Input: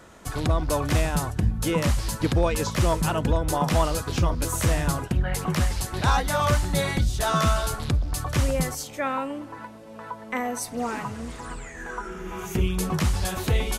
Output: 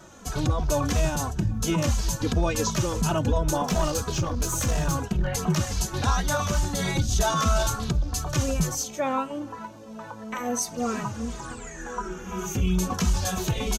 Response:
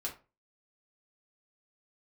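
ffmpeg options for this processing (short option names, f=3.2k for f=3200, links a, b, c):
-filter_complex "[0:a]asettb=1/sr,asplit=3[a][b][c];[a]atrim=end=3.654[d];[b]atrim=start=3.65:end=5.27,asetpts=PTS-STARTPTS,afade=t=in:d=0.004:c=qsin,afade=t=out:st=1.616:d=0.004:c=qsin,aeval=exprs='clip(val(0),-1,0.0631)':c=same[e];[c]atrim=start=5.266[f];[d][e]acrossfade=d=0.004:c1=hsin:c2=qsin[g];[g][f]acrossfade=d=0.004:c1=qsin:c2=hsin,equalizer=f=200:t=o:w=0.33:g=5,equalizer=f=2k:t=o:w=0.33:g=-6,equalizer=f=6.3k:t=o:w=0.33:g=9,equalizer=f=10k:t=o:w=0.33:g=-6,asplit=3[h][i][j];[h]afade=t=out:st=6.95:d=0.02[k];[i]acontrast=59,afade=t=in:st=6.95:d=0.02,afade=t=out:st=7.68:d=0.02[l];[j]afade=t=in:st=7.68:d=0.02[m];[k][l][m]amix=inputs=3:normalize=0,alimiter=limit=-16.5dB:level=0:latency=1:release=12,asplit=2[n][o];[o]adelay=2.7,afreqshift=-2.9[p];[n][p]amix=inputs=2:normalize=1,volume=3.5dB"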